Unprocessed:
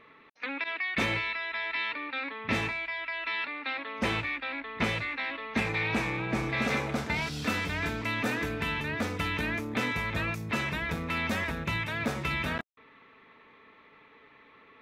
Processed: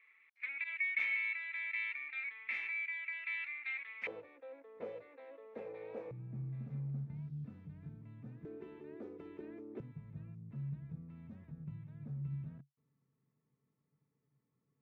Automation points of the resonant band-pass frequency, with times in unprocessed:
resonant band-pass, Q 9.3
2,200 Hz
from 0:04.07 500 Hz
from 0:06.11 140 Hz
from 0:08.45 370 Hz
from 0:09.80 140 Hz

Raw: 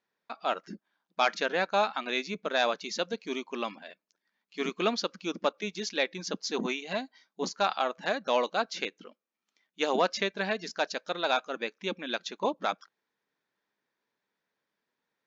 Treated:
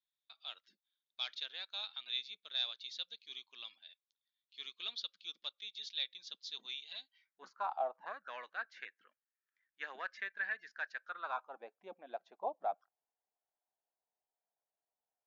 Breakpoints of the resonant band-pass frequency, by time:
resonant band-pass, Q 7.1
0:07.03 3,600 Hz
0:07.83 680 Hz
0:08.34 1,700 Hz
0:10.98 1,700 Hz
0:11.65 720 Hz

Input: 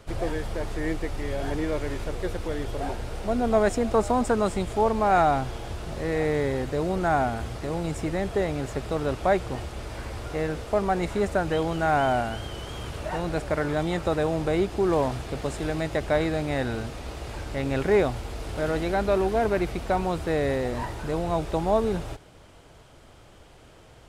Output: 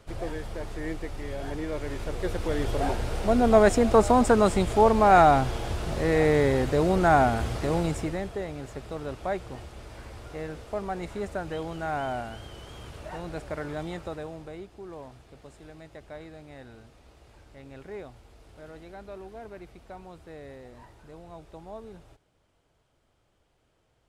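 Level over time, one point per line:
0:01.67 −5 dB
0:02.68 +3.5 dB
0:07.79 +3.5 dB
0:08.38 −8 dB
0:13.88 −8 dB
0:14.71 −19 dB

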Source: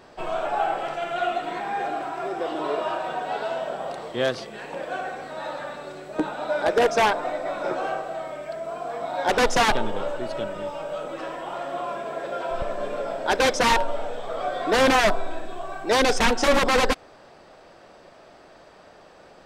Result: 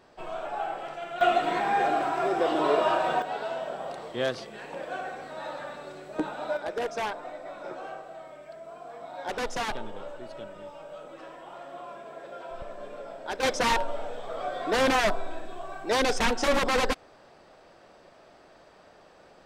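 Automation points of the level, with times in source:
−8 dB
from 0:01.21 +3 dB
from 0:03.22 −4.5 dB
from 0:06.57 −11.5 dB
from 0:13.43 −5 dB

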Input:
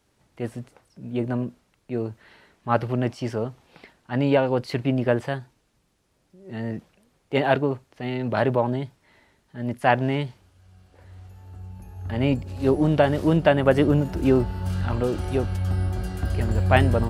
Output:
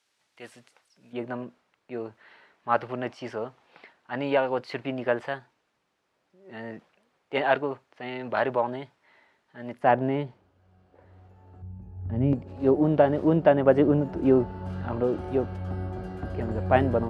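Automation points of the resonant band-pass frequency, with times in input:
resonant band-pass, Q 0.55
3,700 Hz
from 0:01.13 1,300 Hz
from 0:09.79 490 Hz
from 0:11.62 150 Hz
from 0:12.33 470 Hz

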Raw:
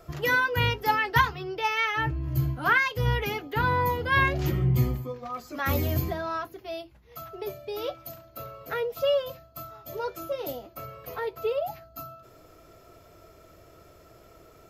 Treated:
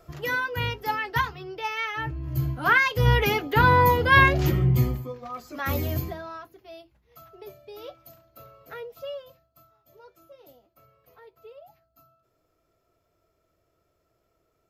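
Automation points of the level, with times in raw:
0:02.06 −3.5 dB
0:03.24 +7 dB
0:04.09 +7 dB
0:05.17 −1 dB
0:05.95 −1 dB
0:06.39 −8.5 dB
0:08.79 −8.5 dB
0:09.79 −19 dB

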